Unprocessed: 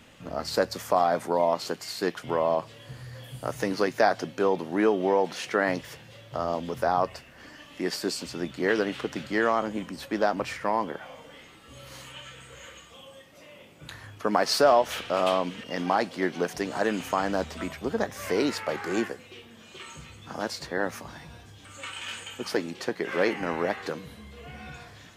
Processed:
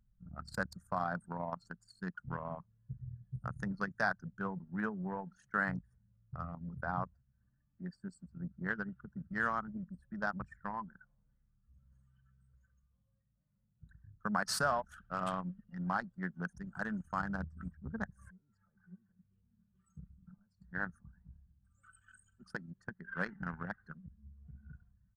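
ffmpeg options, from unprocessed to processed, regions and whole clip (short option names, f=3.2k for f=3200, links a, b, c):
-filter_complex "[0:a]asettb=1/sr,asplit=3[a][b][c];[a]atrim=end=6.814[d];[b]atrim=start=6.81:end=9.32,asetpts=PTS-STARTPTS,afade=t=in:d=0.004:c=qsin,afade=t=out:st=2.506:d=0.004:c=qsin,highpass=63,highshelf=f=2.9k:g=-6.5[e];[c]atrim=start=9.316[f];[d][e]acrossfade=d=0.004:c1=hsin:c2=qsin[g];[g][f]acrossfade=d=0.004:c1=qsin:c2=hsin,asettb=1/sr,asplit=3[h][i][j];[h]atrim=end=18.304[k];[i]atrim=start=18.3:end=20.73,asetpts=PTS-STARTPTS,afade=t=in:d=0.004:c=qsin,afade=t=out:st=2.426:d=0.004:c=qsin,acompressor=threshold=-38dB:ratio=16:attack=3.2:release=140:knee=1:detection=peak,equalizer=f=180:t=o:w=0.22:g=11.5[l];[j]atrim=start=20.726[m];[k][l]acrossfade=d=0.004:c1=hsin:c2=qsin[n];[n][m]acrossfade=d=0.004:c1=qsin:c2=hsin,firequalizer=gain_entry='entry(180,0);entry(310,-23);entry(1500,-1);entry(2200,-16);entry(8500,5);entry(14000,-2)':delay=0.05:min_phase=1,anlmdn=6.31,highshelf=f=4.4k:g=-9,volume=1dB"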